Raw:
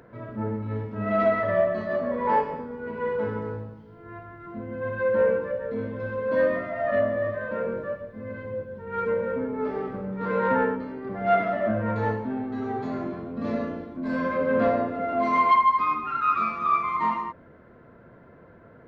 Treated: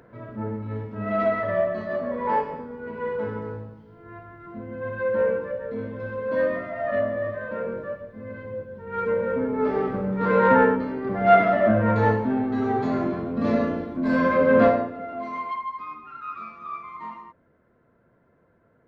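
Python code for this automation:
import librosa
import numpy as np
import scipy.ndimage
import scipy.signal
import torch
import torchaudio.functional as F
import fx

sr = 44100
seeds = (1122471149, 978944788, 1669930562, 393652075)

y = fx.gain(x, sr, db=fx.line((8.74, -1.0), (9.79, 6.0), (14.64, 6.0), (14.92, -4.5), (15.52, -12.0)))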